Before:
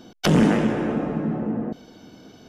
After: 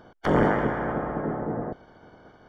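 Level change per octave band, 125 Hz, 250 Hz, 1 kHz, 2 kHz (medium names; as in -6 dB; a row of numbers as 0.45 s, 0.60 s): -6.0 dB, -7.5 dB, +2.5 dB, 0.0 dB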